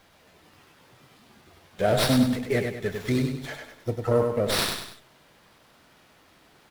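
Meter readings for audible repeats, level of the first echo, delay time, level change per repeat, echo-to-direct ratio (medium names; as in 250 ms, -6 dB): 3, -5.0 dB, 99 ms, -7.5 dB, -4.0 dB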